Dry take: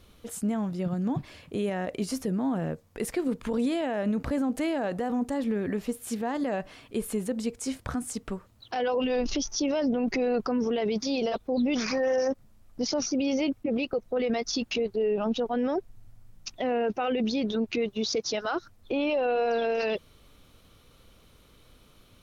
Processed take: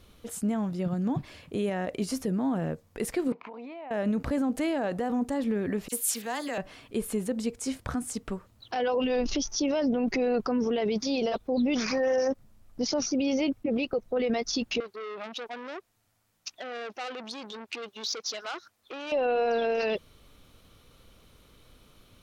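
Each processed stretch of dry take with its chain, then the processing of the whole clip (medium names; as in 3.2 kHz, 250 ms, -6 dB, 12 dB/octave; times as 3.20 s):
3.32–3.91 s: cabinet simulation 380–3700 Hz, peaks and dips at 510 Hz -4 dB, 740 Hz +9 dB, 1 kHz +8 dB, 1.6 kHz -7 dB, 2.3 kHz +7 dB, 3.4 kHz -10 dB + compression 12:1, threshold -38 dBFS
5.88–6.58 s: tilt EQ +4 dB/octave + phase dispersion lows, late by 42 ms, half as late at 2.9 kHz
14.80–19.12 s: high-pass 1 kHz 6 dB/octave + transformer saturation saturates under 2.7 kHz
whole clip: none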